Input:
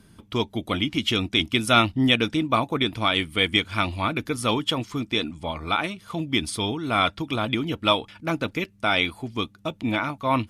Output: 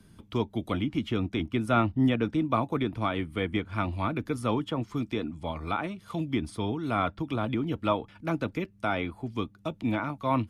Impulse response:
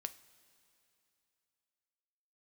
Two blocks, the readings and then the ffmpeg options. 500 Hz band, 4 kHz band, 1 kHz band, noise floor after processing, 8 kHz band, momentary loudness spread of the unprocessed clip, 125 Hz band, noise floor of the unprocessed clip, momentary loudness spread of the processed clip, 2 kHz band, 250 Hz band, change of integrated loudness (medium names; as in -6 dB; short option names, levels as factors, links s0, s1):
-4.0 dB, -17.0 dB, -5.5 dB, -57 dBFS, -15.5 dB, 10 LU, -1.5 dB, -55 dBFS, 8 LU, -10.5 dB, -2.5 dB, -6.0 dB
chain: -filter_complex "[0:a]lowshelf=f=340:g=4,acrossover=split=200|420|1800[s0][s1][s2][s3];[s3]acompressor=threshold=0.01:ratio=6[s4];[s0][s1][s2][s4]amix=inputs=4:normalize=0,volume=0.562"